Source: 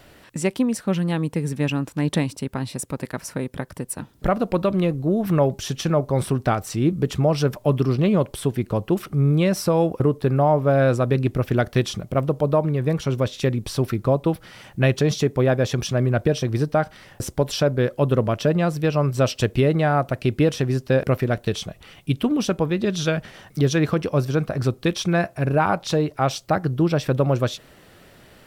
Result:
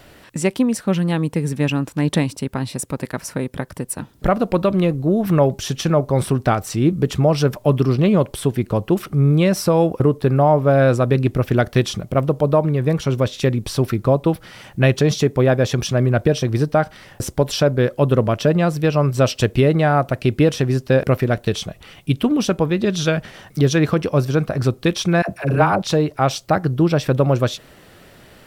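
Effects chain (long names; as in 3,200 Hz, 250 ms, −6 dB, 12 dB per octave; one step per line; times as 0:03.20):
0:25.22–0:25.82: all-pass dispersion lows, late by 71 ms, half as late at 510 Hz
level +3.5 dB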